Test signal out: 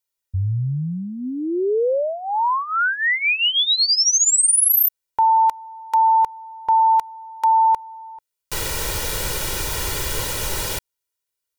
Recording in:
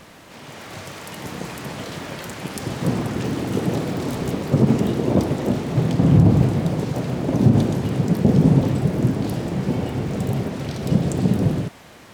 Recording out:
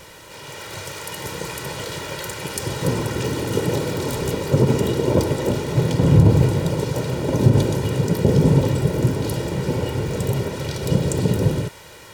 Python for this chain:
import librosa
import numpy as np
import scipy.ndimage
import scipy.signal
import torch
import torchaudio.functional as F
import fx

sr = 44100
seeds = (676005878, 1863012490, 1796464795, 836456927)

y = fx.high_shelf(x, sr, hz=3700.0, db=6.0)
y = y + 0.69 * np.pad(y, (int(2.1 * sr / 1000.0), 0))[:len(y)]
y = fx.dynamic_eq(y, sr, hz=250.0, q=7.1, threshold_db=-43.0, ratio=4.0, max_db=7)